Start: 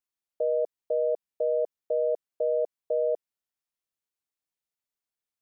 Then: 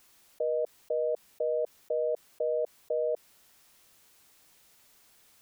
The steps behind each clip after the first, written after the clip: fast leveller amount 50%; gain -3.5 dB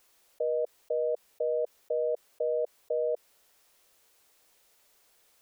graphic EQ 125/250/500 Hz -8/-4/+6 dB; gain -4 dB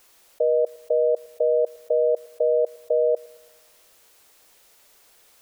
thinning echo 0.111 s, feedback 83%, high-pass 610 Hz, level -21 dB; gain +9 dB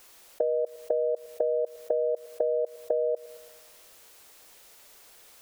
compressor 10:1, threshold -26 dBFS, peak gain reduction 9.5 dB; gain +2.5 dB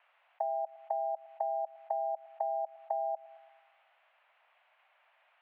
mistuned SSB +180 Hz 410–2600 Hz; gain -6.5 dB

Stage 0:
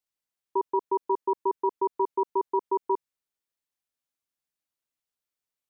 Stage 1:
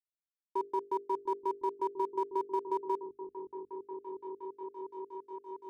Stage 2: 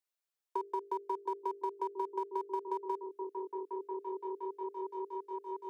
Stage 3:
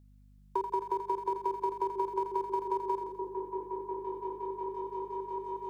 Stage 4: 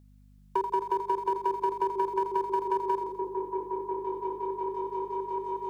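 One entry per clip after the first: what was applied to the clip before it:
crossover distortion -49.5 dBFS; notches 50/100/150/200/250/300/350/400/450 Hz; repeats that get brighter 0.698 s, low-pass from 200 Hz, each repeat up 1 oct, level -3 dB; gain -6 dB
steep high-pass 350 Hz 36 dB/oct; compressor 4:1, threshold -38 dBFS, peak gain reduction 8.5 dB; gain +4.5 dB
hum 50 Hz, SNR 23 dB; on a send: split-band echo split 560 Hz, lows 0.385 s, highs 84 ms, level -7 dB; on the sum: gain +4 dB
low shelf 130 Hz -4 dB; soft clip -21 dBFS, distortion -24 dB; gain +5 dB

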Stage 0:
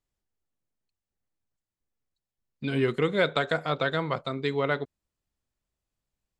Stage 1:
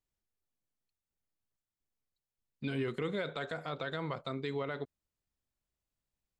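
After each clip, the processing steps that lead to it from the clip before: limiter -21 dBFS, peak gain reduction 10.5 dB; gain -5 dB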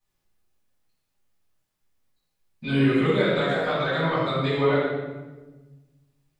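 low shelf 270 Hz -5.5 dB; reverb RT60 1.2 s, pre-delay 5 ms, DRR -12 dB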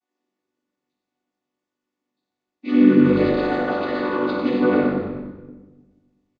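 chord vocoder minor triad, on B3; frequency-shifting echo 94 ms, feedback 50%, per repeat -50 Hz, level -8 dB; gain +5 dB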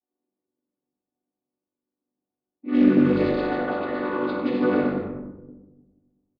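low-pass opened by the level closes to 670 Hz, open at -13 dBFS; Doppler distortion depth 0.19 ms; gain -3.5 dB

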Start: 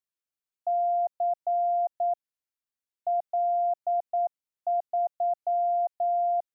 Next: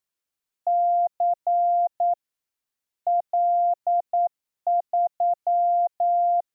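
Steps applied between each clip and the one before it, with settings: dynamic EQ 580 Hz, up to -3 dB, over -37 dBFS, Q 2.9; gain +6 dB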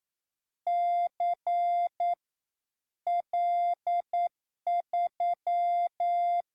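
in parallel at -7.5 dB: overloaded stage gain 26.5 dB; on the sum: gain -8 dB; AAC 64 kbps 44100 Hz

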